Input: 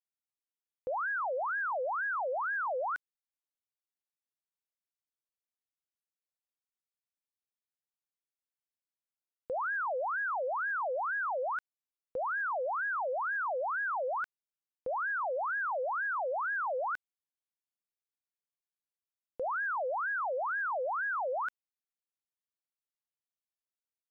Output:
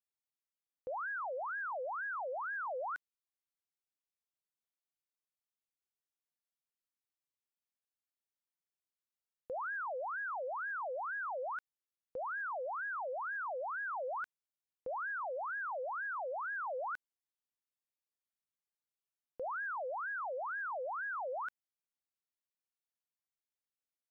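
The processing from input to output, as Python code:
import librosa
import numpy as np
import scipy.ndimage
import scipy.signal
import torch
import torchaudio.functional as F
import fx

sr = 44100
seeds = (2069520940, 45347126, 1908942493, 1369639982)

y = fx.rider(x, sr, range_db=10, speed_s=0.5)
y = F.gain(torch.from_numpy(y), -5.5).numpy()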